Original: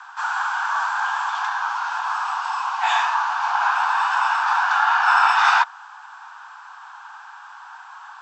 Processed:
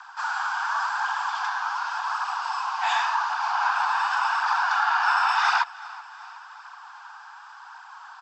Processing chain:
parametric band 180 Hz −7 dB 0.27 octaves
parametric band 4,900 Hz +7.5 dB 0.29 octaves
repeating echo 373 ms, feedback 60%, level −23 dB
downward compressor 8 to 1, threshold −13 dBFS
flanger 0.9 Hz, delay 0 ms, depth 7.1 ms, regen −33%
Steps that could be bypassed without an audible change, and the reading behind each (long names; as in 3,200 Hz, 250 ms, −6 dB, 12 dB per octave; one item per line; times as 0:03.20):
parametric band 180 Hz: nothing at its input below 640 Hz